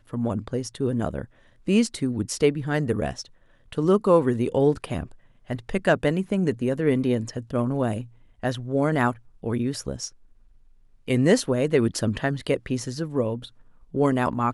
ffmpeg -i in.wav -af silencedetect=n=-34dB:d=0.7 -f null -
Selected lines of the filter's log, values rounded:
silence_start: 10.08
silence_end: 11.08 | silence_duration: 1.00